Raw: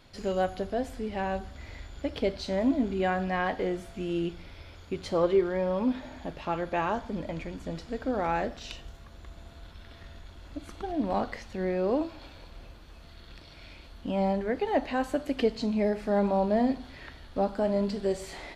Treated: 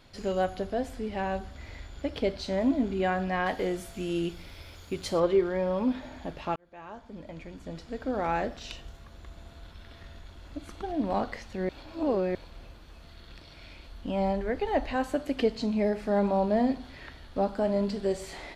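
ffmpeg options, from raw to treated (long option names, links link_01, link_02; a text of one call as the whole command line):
ffmpeg -i in.wav -filter_complex "[0:a]asettb=1/sr,asplit=3[link_01][link_02][link_03];[link_01]atrim=end=3.464[link_04];[link_02]atrim=start=3.46:end=5.2,asetpts=PTS-STARTPTS,afade=type=in:duration=0.004:curve=qsin,afade=type=out:start_time=1.736:duration=0.004:curve=qsin,aemphasis=mode=production:type=50kf[link_05];[link_03]atrim=start=5.196[link_06];[link_04][link_05]acrossfade=duration=0.004:curve1=hsin:curve2=qsin[link_07];[link_07][link_06]acrossfade=duration=0.004:curve1=qsin:curve2=hsin,asettb=1/sr,asplit=3[link_08][link_09][link_10];[link_08]atrim=end=13.694[link_11];[link_09]atrim=start=13.69:end=14.96,asetpts=PTS-STARTPTS,afade=type=in:duration=0.004:curve=qsin,afade=type=out:start_time=1.266:duration=0.004:curve=qsin,asubboost=boost=9:cutoff=85[link_12];[link_10]atrim=start=14.956[link_13];[link_11][link_12]acrossfade=duration=0.004:curve1=hsin:curve2=qsin[link_14];[link_14][link_13]acrossfade=duration=0.004:curve1=qsin:curve2=hsin,asplit=4[link_15][link_16][link_17][link_18];[link_15]atrim=end=6.56,asetpts=PTS-STARTPTS,afade=type=out:start_time=6.556:duration=0.004:curve=hsin[link_19];[link_16]atrim=start=6.56:end=11.692,asetpts=PTS-STARTPTS,afade=type=in:duration=1.77[link_20];[link_17]atrim=start=11.688:end=12.352,asetpts=PTS-STARTPTS,areverse[link_21];[link_18]atrim=start=12.348[link_22];[link_19][link_20]concat=n=2:v=0:a=1[link_23];[link_23][link_21]acrossfade=duration=0.004:curve1=hsin:curve2=hsin[link_24];[link_24][link_22]acrossfade=duration=0.004:curve1=hsin:curve2=hsin" out.wav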